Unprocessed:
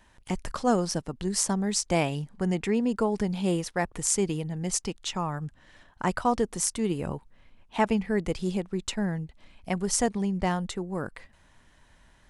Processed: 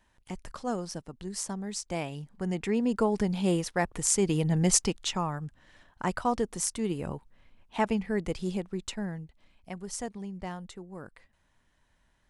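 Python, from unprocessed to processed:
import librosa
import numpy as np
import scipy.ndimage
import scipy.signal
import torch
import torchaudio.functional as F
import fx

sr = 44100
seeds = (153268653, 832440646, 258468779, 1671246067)

y = fx.gain(x, sr, db=fx.line((2.06, -8.5), (2.97, 0.0), (4.21, 0.0), (4.54, 8.0), (5.44, -3.0), (8.65, -3.0), (9.73, -11.0)))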